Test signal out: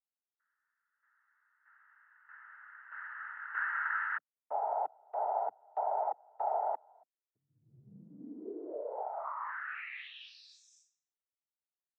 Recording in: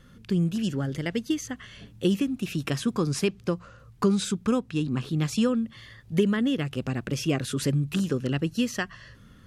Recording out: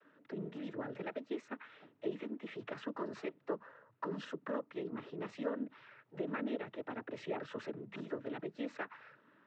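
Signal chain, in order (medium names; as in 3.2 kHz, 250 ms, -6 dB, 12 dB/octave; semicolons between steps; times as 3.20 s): peak limiter -21 dBFS; noise-vocoded speech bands 12; Butterworth band-pass 830 Hz, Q 0.54; trim -4.5 dB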